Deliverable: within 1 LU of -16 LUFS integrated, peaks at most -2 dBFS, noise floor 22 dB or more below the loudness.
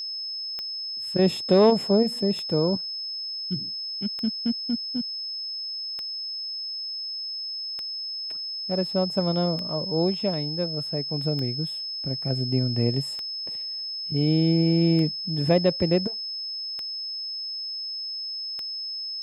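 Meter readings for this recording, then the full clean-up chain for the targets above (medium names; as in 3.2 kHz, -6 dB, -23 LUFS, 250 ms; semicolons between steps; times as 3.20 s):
clicks found 11; steady tone 5.2 kHz; tone level -30 dBFS; loudness -26.0 LUFS; peak level -8.0 dBFS; loudness target -16.0 LUFS
-> de-click; band-stop 5.2 kHz, Q 30; trim +10 dB; peak limiter -2 dBFS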